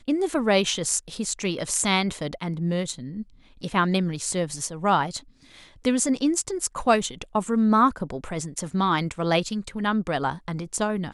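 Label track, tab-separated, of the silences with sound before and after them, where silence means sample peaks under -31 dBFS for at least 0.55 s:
5.190000	5.850000	silence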